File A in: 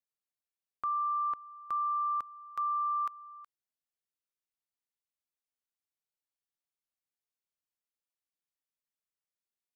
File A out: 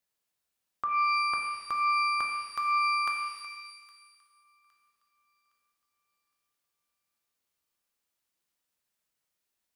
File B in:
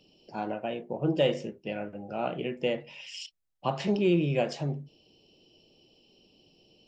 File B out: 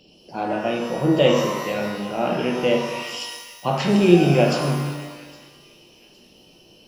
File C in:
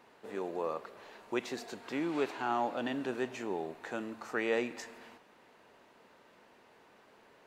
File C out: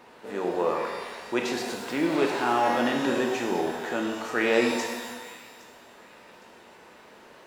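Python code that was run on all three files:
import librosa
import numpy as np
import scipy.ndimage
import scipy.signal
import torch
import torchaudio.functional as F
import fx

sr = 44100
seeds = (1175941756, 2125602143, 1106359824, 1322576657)

y = fx.echo_wet_highpass(x, sr, ms=813, feedback_pct=36, hz=2000.0, wet_db=-19)
y = fx.transient(y, sr, attack_db=-3, sustain_db=1)
y = fx.rev_shimmer(y, sr, seeds[0], rt60_s=1.3, semitones=12, shimmer_db=-8, drr_db=1.5)
y = y * librosa.db_to_amplitude(8.0)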